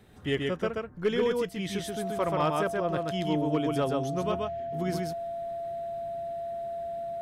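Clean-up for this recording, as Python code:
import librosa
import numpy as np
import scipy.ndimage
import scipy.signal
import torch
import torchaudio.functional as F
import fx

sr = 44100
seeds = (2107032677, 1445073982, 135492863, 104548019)

y = fx.fix_declip(x, sr, threshold_db=-18.5)
y = fx.notch(y, sr, hz=680.0, q=30.0)
y = fx.fix_echo_inverse(y, sr, delay_ms=131, level_db=-3.0)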